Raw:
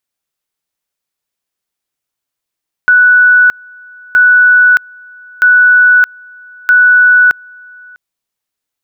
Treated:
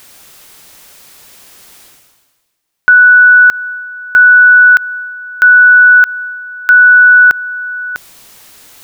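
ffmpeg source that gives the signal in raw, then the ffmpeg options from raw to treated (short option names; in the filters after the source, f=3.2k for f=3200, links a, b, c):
-f lavfi -i "aevalsrc='pow(10,(-3-29*gte(mod(t,1.27),0.62))/20)*sin(2*PI*1480*t)':d=5.08:s=44100"
-af "areverse,acompressor=mode=upward:threshold=-23dB:ratio=2.5,areverse,alimiter=level_in=9dB:limit=-1dB:release=50:level=0:latency=1"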